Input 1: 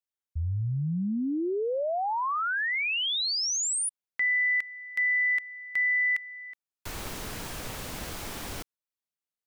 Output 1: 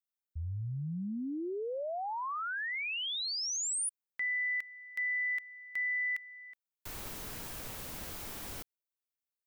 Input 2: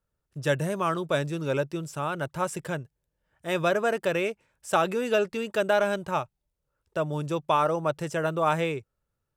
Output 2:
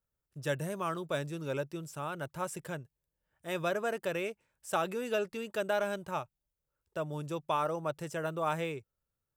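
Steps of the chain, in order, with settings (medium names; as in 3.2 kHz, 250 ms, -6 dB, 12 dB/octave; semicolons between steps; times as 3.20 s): treble shelf 12 kHz +11 dB; trim -8 dB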